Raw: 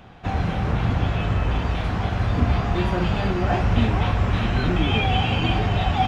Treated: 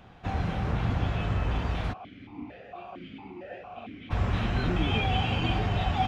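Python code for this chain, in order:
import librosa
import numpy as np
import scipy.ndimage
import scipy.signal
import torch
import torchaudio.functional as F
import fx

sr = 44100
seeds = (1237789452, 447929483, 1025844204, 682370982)

y = fx.vowel_held(x, sr, hz=4.4, at=(1.92, 4.1), fade=0.02)
y = y * librosa.db_to_amplitude(-6.0)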